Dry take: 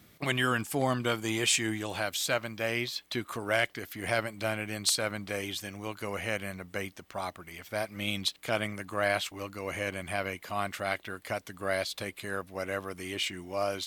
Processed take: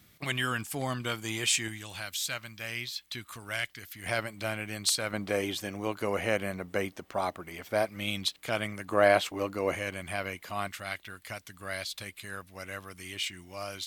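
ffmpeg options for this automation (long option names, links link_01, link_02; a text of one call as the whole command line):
ffmpeg -i in.wav -af "asetnsamples=nb_out_samples=441:pad=0,asendcmd='1.68 equalizer g -14.5;4.06 equalizer g -3;5.13 equalizer g 6.5;7.89 equalizer g -1.5;8.89 equalizer g 8.5;9.75 equalizer g -2.5;10.68 equalizer g -10.5',equalizer=frequency=460:width_type=o:width=2.8:gain=-6.5" out.wav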